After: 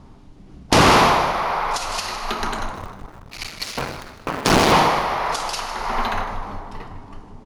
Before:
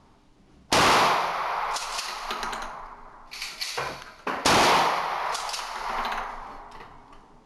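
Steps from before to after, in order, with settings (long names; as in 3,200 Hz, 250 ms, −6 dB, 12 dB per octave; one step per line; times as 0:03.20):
0:02.75–0:04.72: sub-harmonics by changed cycles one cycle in 2, muted
low-shelf EQ 360 Hz +11 dB
echo with shifted repeats 155 ms, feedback 44%, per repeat −110 Hz, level −13 dB
level +4 dB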